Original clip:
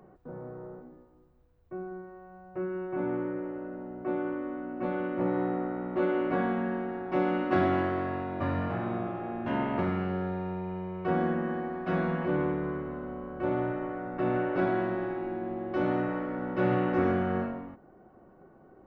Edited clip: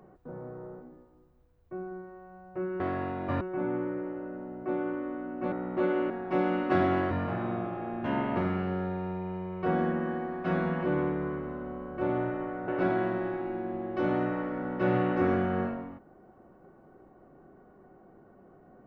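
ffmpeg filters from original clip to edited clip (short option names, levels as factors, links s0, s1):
-filter_complex "[0:a]asplit=7[s0][s1][s2][s3][s4][s5][s6];[s0]atrim=end=2.802[s7];[s1]atrim=start=7.918:end=8.532[s8];[s2]atrim=start=2.798:end=4.912[s9];[s3]atrim=start=5.708:end=6.292[s10];[s4]atrim=start=6.908:end=7.922[s11];[s5]atrim=start=8.528:end=14.102[s12];[s6]atrim=start=14.448[s13];[s7][s8]acrossfade=d=0.004:c1=hsin:c2=hsin[s14];[s14][s9]acrossfade=d=0.004:c1=hsin:c2=hsin[s15];[s15][s10]acrossfade=d=0.004:c1=hsin:c2=hsin[s16];[s16][s11]acrossfade=d=0.004:c1=hsin:c2=hsin[s17];[s17][s12]acrossfade=d=0.004:c1=hsin:c2=hsin[s18];[s18][s13]acrossfade=d=0.004:c1=hsin:c2=hsin"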